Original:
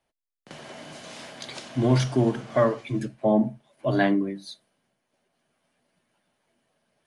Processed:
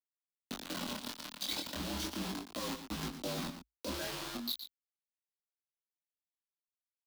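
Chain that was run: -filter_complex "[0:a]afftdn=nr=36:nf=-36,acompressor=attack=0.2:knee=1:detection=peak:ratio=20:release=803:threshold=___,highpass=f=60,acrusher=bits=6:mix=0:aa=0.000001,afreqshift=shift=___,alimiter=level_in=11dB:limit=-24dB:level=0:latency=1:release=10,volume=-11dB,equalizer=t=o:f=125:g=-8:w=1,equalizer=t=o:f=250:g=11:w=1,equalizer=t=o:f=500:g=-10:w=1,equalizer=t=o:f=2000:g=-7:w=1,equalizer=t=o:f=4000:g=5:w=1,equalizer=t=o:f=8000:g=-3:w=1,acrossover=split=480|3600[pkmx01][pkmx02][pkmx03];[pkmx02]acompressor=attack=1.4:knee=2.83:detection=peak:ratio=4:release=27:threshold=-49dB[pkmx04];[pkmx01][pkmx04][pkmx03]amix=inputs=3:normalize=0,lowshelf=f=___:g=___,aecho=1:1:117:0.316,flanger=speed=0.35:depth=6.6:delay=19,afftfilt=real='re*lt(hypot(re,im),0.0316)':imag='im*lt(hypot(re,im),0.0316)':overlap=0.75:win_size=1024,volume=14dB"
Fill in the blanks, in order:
-31dB, -57, 220, -11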